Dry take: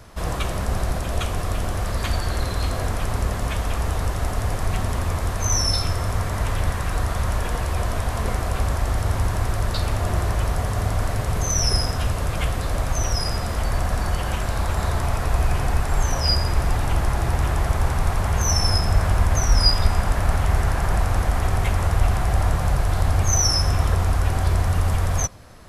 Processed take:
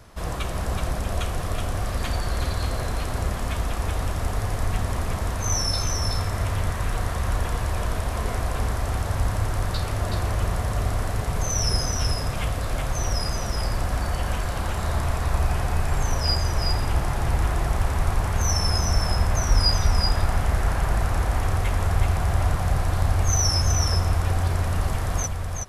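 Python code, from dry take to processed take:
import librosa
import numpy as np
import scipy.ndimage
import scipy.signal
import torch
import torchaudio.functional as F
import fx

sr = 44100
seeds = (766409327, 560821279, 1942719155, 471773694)

y = x + 10.0 ** (-4.5 / 20.0) * np.pad(x, (int(374 * sr / 1000.0), 0))[:len(x)]
y = y * 10.0 ** (-3.5 / 20.0)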